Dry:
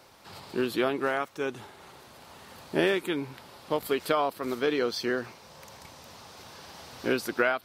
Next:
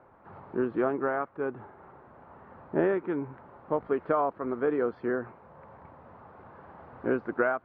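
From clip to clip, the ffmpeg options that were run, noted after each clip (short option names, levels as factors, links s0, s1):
-af "lowpass=f=1500:w=0.5412,lowpass=f=1500:w=1.3066"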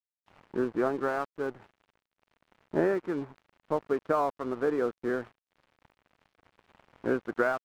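-af "aeval=exprs='sgn(val(0))*max(abs(val(0))-0.00562,0)':c=same"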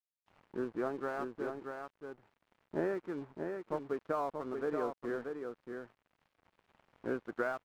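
-af "aecho=1:1:632:0.531,volume=0.398"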